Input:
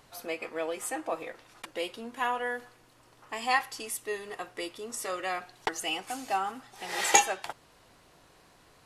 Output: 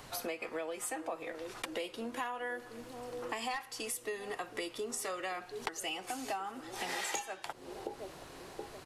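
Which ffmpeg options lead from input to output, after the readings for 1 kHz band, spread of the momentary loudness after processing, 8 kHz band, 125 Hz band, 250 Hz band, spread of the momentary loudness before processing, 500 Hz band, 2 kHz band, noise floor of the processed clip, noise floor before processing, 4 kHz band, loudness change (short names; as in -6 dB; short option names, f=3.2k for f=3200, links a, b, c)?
-9.0 dB, 8 LU, -9.0 dB, -0.5 dB, -2.0 dB, 14 LU, -4.0 dB, -7.5 dB, -53 dBFS, -61 dBFS, -6.0 dB, -8.0 dB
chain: -filter_complex "[0:a]acrossover=split=280|440|5100[a][b][c][d];[b]aecho=1:1:724|1448|2172|2896|3620:0.562|0.231|0.0945|0.0388|0.0159[e];[c]asoftclip=type=hard:threshold=-20.5dB[f];[a][e][f][d]amix=inputs=4:normalize=0,acompressor=threshold=-44dB:ratio=8,volume=8dB"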